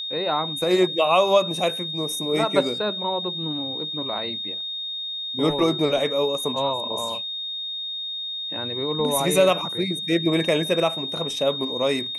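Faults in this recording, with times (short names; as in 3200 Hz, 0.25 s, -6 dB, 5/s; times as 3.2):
tone 3700 Hz -28 dBFS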